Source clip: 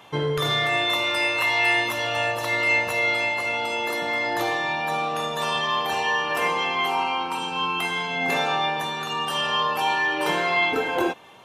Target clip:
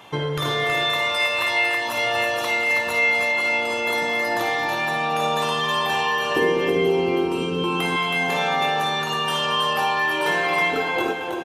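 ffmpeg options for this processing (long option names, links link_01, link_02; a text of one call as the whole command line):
ffmpeg -i in.wav -filter_complex "[0:a]asettb=1/sr,asplit=3[link_01][link_02][link_03];[link_01]atrim=end=6.364[link_04];[link_02]atrim=start=6.36:end=7.64,asetpts=PTS-STARTPTS,afade=type=in:duration=0.004:curve=qsin,afade=type=out:start_time=1.276:duration=0.004:curve=qsin,lowshelf=frequency=580:width_type=q:width=3:gain=14[link_05];[link_03]atrim=start=7.636[link_06];[link_04][link_05]acrossfade=duration=0.004:curve1=hsin:curve2=qsin[link_07];[link_07][link_06]acrossfade=duration=0.004:curve1=qsin:curve2=hsin,acompressor=threshold=-25dB:ratio=3,asplit=2[link_08][link_09];[link_09]aecho=0:1:56|224|322:0.355|0.224|0.631[link_10];[link_08][link_10]amix=inputs=2:normalize=0,volume=3dB" out.wav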